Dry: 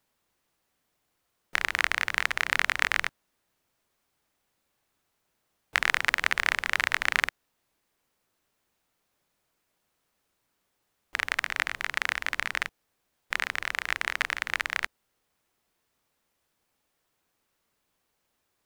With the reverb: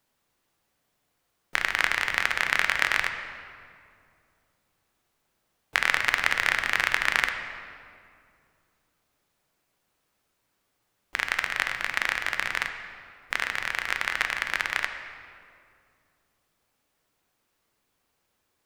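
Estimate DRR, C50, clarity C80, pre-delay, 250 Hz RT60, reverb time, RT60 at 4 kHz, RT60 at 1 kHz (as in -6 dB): 6.0 dB, 7.0 dB, 8.5 dB, 6 ms, 2.9 s, 2.4 s, 1.5 s, 2.2 s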